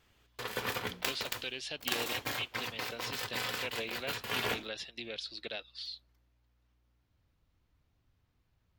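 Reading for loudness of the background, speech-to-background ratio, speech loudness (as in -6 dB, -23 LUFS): -37.0 LUFS, -3.5 dB, -40.5 LUFS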